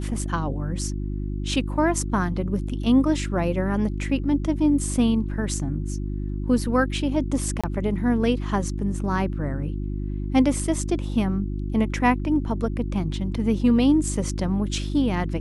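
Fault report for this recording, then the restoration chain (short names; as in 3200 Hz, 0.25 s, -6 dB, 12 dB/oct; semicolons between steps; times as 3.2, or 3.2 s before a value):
hum 50 Hz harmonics 7 -28 dBFS
7.61–7.64 gap 26 ms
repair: de-hum 50 Hz, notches 7; interpolate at 7.61, 26 ms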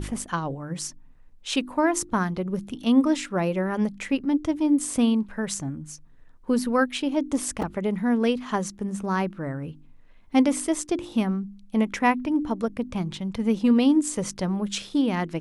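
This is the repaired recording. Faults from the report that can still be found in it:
none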